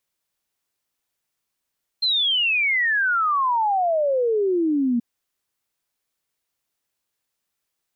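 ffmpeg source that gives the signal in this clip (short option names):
-f lavfi -i "aevalsrc='0.133*clip(min(t,2.98-t)/0.01,0,1)*sin(2*PI*4200*2.98/log(230/4200)*(exp(log(230/4200)*t/2.98)-1))':d=2.98:s=44100"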